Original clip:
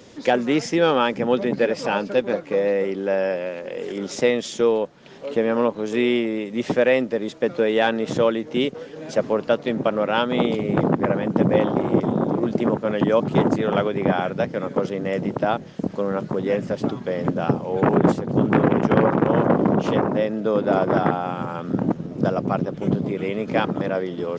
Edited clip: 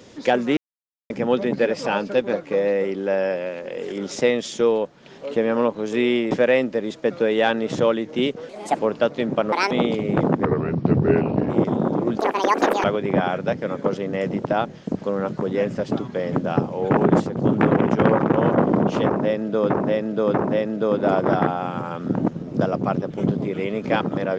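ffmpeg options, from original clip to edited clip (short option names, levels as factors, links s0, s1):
-filter_complex "[0:a]asplit=14[s0][s1][s2][s3][s4][s5][s6][s7][s8][s9][s10][s11][s12][s13];[s0]atrim=end=0.57,asetpts=PTS-STARTPTS,afade=t=out:st=0.566:d=0.004:c=hsin[s14];[s1]atrim=start=0.57:end=1.1,asetpts=PTS-STARTPTS,volume=0[s15];[s2]atrim=start=1.1:end=6.312,asetpts=PTS-STARTPTS,afade=t=in:d=0.004:c=hsin[s16];[s3]atrim=start=6.688:end=8.874[s17];[s4]atrim=start=8.87:end=9.27,asetpts=PTS-STARTPTS,asetrate=58653,aresample=44100,atrim=end_sample=13263,asetpts=PTS-STARTPTS[s18];[s5]atrim=start=9.266:end=10.004[s19];[s6]atrim=start=10:end=10.31,asetpts=PTS-STARTPTS,asetrate=72765,aresample=44100,atrim=end_sample=8285,asetpts=PTS-STARTPTS[s20];[s7]atrim=start=10.306:end=11.054[s21];[s8]atrim=start=11.05:end=11.86,asetpts=PTS-STARTPTS,asetrate=33957,aresample=44100[s22];[s9]atrim=start=11.856:end=12.554[s23];[s10]atrim=start=12.55:end=13.76,asetpts=PTS-STARTPTS,asetrate=82026,aresample=44100[s24];[s11]atrim=start=13.756:end=20.622[s25];[s12]atrim=start=19.978:end=20.622[s26];[s13]atrim=start=19.978[s27];[s14][s15][s16]concat=n=3:v=0:a=1[s28];[s28][s17]acrossfade=d=0.004:c1=hsin:c2=hsin[s29];[s29][s18]acrossfade=d=0.004:c1=hsin:c2=hsin[s30];[s30][s19]acrossfade=d=0.004:c1=hsin:c2=hsin[s31];[s31][s20]acrossfade=d=0.004:c1=hsin:c2=hsin[s32];[s32][s21]acrossfade=d=0.004:c1=hsin:c2=hsin[s33];[s33][s22]acrossfade=d=0.004:c1=hsin:c2=hsin[s34];[s34][s23]acrossfade=d=0.004:c1=hsin:c2=hsin[s35];[s35][s24]acrossfade=d=0.004:c1=hsin:c2=hsin[s36];[s36][s25]acrossfade=d=0.004:c1=hsin:c2=hsin[s37];[s37][s26]acrossfade=d=0.004:c1=hsin:c2=hsin[s38];[s38][s27]acrossfade=d=0.004:c1=hsin:c2=hsin"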